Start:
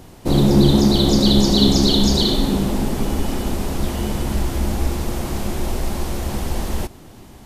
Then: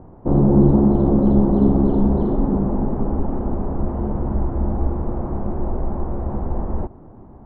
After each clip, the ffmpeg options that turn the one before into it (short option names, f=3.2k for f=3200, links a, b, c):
-af "lowpass=f=1.1k:w=0.5412,lowpass=f=1.1k:w=1.3066"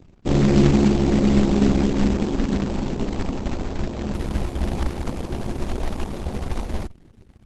-af "anlmdn=2.51,acrusher=bits=3:mode=log:mix=0:aa=0.000001,volume=-2dB" -ar 48000 -c:a libopus -b:a 12k